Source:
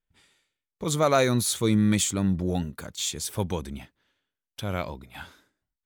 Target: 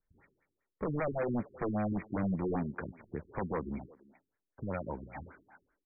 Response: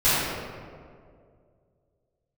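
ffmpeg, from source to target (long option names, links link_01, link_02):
-filter_complex "[0:a]lowpass=3700,acrossover=split=180[link_01][link_02];[link_01]acompressor=threshold=-45dB:ratio=6[link_03];[link_02]alimiter=limit=-18.5dB:level=0:latency=1:release=118[link_04];[link_03][link_04]amix=inputs=2:normalize=0,aeval=exprs='0.133*(cos(1*acos(clip(val(0)/0.133,-1,1)))-cos(1*PI/2))+0.00473*(cos(5*acos(clip(val(0)/0.133,-1,1)))-cos(5*PI/2))':channel_layout=same,aresample=11025,aeval=exprs='0.0473*(abs(mod(val(0)/0.0473+3,4)-2)-1)':channel_layout=same,aresample=44100,asplit=2[link_05][link_06];[link_06]adelay=340,highpass=300,lowpass=3400,asoftclip=type=hard:threshold=-33dB,volume=-17dB[link_07];[link_05][link_07]amix=inputs=2:normalize=0,afftfilt=real='re*lt(b*sr/1024,390*pow(2500/390,0.5+0.5*sin(2*PI*5.1*pts/sr)))':imag='im*lt(b*sr/1024,390*pow(2500/390,0.5+0.5*sin(2*PI*5.1*pts/sr)))':win_size=1024:overlap=0.75"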